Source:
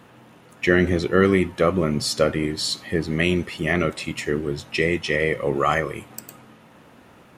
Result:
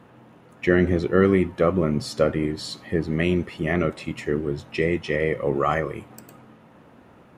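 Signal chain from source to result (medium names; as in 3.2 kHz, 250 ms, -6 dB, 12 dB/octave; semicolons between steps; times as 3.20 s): treble shelf 2.2 kHz -11 dB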